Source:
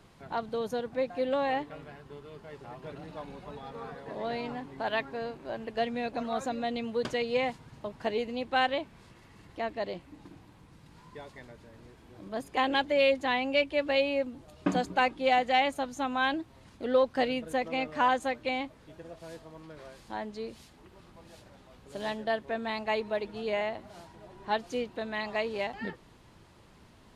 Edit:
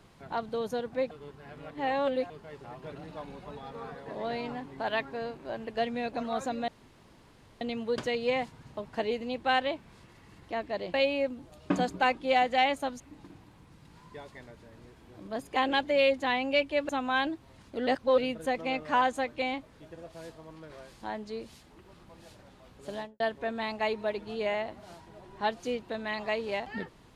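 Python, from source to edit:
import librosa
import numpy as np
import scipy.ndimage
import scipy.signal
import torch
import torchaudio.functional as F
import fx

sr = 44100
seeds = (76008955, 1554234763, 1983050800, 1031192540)

y = fx.studio_fade_out(x, sr, start_s=21.95, length_s=0.32)
y = fx.edit(y, sr, fx.reverse_span(start_s=1.11, length_s=1.19),
    fx.insert_room_tone(at_s=6.68, length_s=0.93),
    fx.move(start_s=13.9, length_s=2.06, to_s=10.01),
    fx.reverse_span(start_s=16.94, length_s=0.31), tone=tone)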